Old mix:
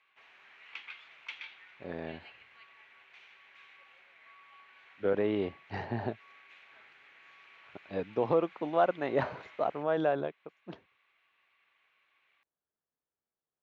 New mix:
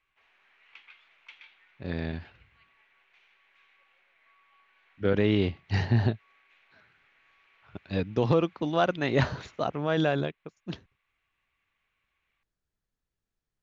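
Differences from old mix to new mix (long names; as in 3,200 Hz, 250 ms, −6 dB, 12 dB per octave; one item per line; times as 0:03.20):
speech: remove resonant band-pass 700 Hz, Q 0.98
background −7.0 dB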